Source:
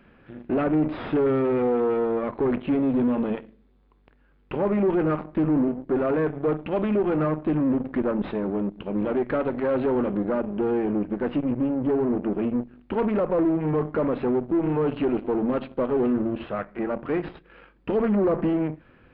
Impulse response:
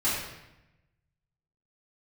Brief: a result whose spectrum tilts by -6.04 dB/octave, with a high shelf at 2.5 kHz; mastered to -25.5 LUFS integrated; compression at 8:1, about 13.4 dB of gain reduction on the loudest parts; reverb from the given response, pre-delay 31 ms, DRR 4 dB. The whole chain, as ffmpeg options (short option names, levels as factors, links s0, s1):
-filter_complex "[0:a]highshelf=f=2500:g=-6,acompressor=threshold=0.02:ratio=8,asplit=2[s0][s1];[1:a]atrim=start_sample=2205,adelay=31[s2];[s1][s2]afir=irnorm=-1:irlink=0,volume=0.178[s3];[s0][s3]amix=inputs=2:normalize=0,volume=3.55"